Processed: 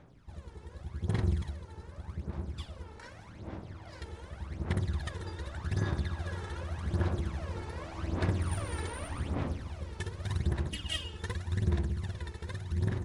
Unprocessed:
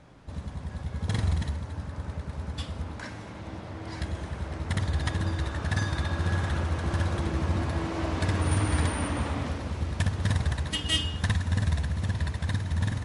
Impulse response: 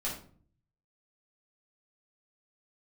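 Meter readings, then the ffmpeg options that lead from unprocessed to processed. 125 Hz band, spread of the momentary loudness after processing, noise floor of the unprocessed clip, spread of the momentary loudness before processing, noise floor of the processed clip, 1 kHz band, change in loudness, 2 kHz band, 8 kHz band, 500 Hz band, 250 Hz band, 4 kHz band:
-6.0 dB, 15 LU, -41 dBFS, 11 LU, -51 dBFS, -8.0 dB, -6.0 dB, -8.5 dB, -9.0 dB, -5.0 dB, -6.0 dB, -9.5 dB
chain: -af "tremolo=f=270:d=0.667,aphaser=in_gain=1:out_gain=1:delay=2.3:decay=0.65:speed=0.85:type=sinusoidal,volume=0.376"

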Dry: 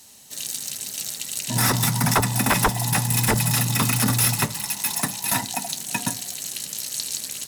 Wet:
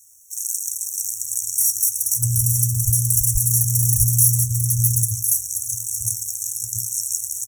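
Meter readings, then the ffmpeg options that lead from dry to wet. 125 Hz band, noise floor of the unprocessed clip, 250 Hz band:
+3.5 dB, -37 dBFS, under -10 dB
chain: -filter_complex "[0:a]acrossover=split=630|2900[s0][s1][s2];[s1]adelay=120[s3];[s0]adelay=690[s4];[s4][s3][s2]amix=inputs=3:normalize=0,aeval=exprs='sgn(val(0))*max(abs(val(0))-0.00299,0)':c=same,afftfilt=real='re*(1-between(b*sr/4096,120,5500))':imag='im*(1-between(b*sr/4096,120,5500))':win_size=4096:overlap=0.75,volume=2.11"

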